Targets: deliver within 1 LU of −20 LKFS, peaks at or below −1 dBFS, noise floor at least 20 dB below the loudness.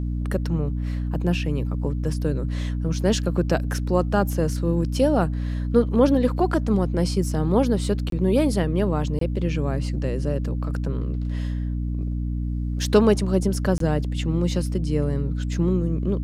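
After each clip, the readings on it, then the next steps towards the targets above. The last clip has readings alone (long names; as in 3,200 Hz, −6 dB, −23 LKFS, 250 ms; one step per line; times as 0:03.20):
number of dropouts 3; longest dropout 23 ms; mains hum 60 Hz; hum harmonics up to 300 Hz; level of the hum −23 dBFS; integrated loudness −23.5 LKFS; sample peak −4.5 dBFS; target loudness −20.0 LKFS
→ repair the gap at 0:08.10/0:09.19/0:13.78, 23 ms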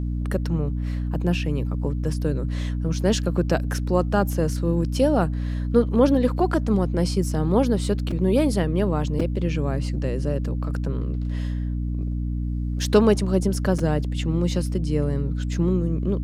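number of dropouts 0; mains hum 60 Hz; hum harmonics up to 300 Hz; level of the hum −23 dBFS
→ hum removal 60 Hz, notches 5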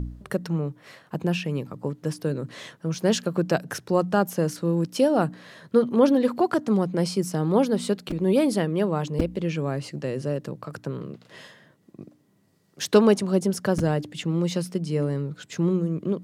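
mains hum none found; integrated loudness −25.0 LKFS; sample peak −5.0 dBFS; target loudness −20.0 LKFS
→ level +5 dB
brickwall limiter −1 dBFS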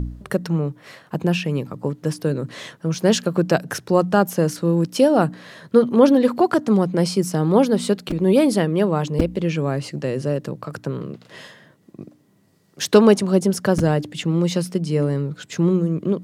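integrated loudness −20.0 LKFS; sample peak −1.0 dBFS; background noise floor −57 dBFS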